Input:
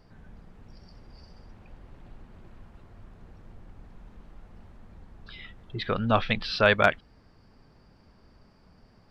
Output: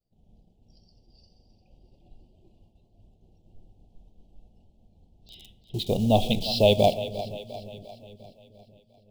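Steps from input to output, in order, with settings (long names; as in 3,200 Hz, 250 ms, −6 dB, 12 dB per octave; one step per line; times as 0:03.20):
noise reduction from a noise print of the clip's start 7 dB
downward expander −51 dBFS
in parallel at −4 dB: bit reduction 6 bits
on the sum: elliptic band-stop filter 760–3,000 Hz, stop band 80 dB
echo with a time of its own for lows and highs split 380 Hz, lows 474 ms, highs 350 ms, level −13.5 dB
on a send at −15 dB: convolution reverb RT60 0.90 s, pre-delay 3 ms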